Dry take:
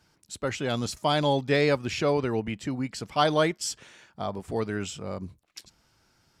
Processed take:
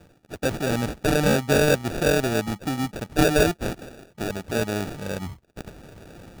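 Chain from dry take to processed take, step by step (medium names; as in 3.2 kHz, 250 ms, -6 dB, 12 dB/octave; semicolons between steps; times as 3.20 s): reverse; upward compressor, threshold -33 dBFS; reverse; sample-and-hold 42×; trim +4 dB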